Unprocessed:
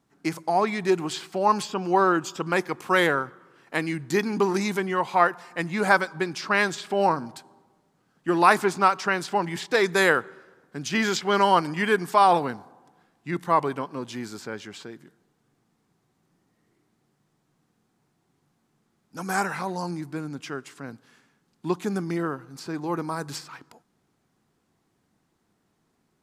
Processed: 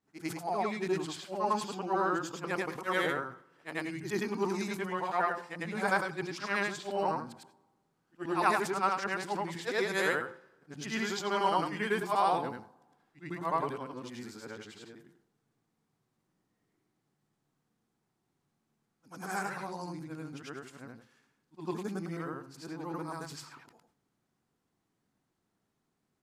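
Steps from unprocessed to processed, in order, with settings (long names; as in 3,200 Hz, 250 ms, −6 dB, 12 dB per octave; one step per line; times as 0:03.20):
every overlapping window played backwards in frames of 216 ms
hum removal 172.6 Hz, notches 7
level that may fall only so fast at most 130 dB per second
level −6 dB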